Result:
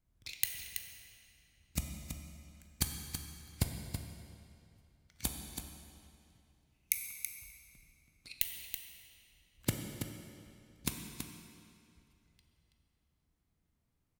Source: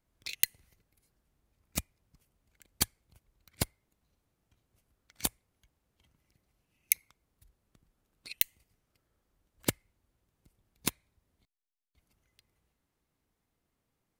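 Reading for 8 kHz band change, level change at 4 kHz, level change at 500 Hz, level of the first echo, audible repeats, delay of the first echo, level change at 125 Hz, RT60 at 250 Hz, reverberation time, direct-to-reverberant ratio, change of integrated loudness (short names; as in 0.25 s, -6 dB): -3.5 dB, -3.5 dB, -5.0 dB, -8.5 dB, 1, 0.328 s, +4.0 dB, 2.5 s, 2.5 s, 1.5 dB, -6.0 dB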